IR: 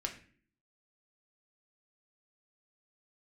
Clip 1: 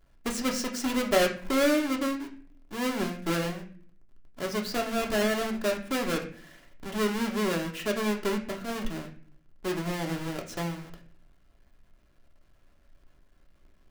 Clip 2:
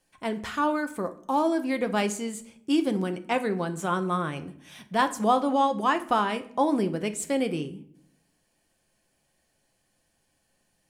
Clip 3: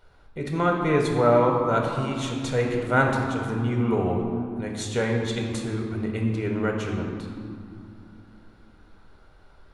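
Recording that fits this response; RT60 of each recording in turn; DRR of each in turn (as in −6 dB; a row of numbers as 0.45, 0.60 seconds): 1; 0.45, 0.65, 2.6 seconds; 1.0, 7.5, 0.0 decibels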